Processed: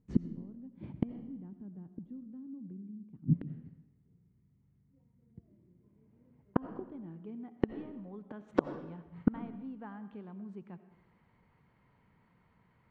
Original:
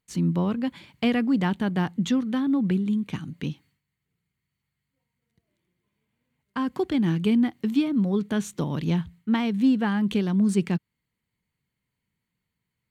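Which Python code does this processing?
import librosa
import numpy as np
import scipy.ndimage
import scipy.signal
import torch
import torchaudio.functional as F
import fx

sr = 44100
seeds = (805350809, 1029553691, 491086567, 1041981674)

p1 = fx.gate_flip(x, sr, shuts_db=-26.0, range_db=-38)
p2 = fx.level_steps(p1, sr, step_db=23)
p3 = p1 + (p2 * librosa.db_to_amplitude(0.0))
p4 = fx.filter_sweep_lowpass(p3, sr, from_hz=270.0, to_hz=920.0, start_s=5.67, end_s=7.78, q=1.1)
p5 = fx.tilt_shelf(p4, sr, db=-6.0, hz=810.0)
p6 = fx.rev_freeverb(p5, sr, rt60_s=0.96, hf_ratio=0.9, predelay_ms=45, drr_db=11.0)
y = p6 * librosa.db_to_amplitude(16.5)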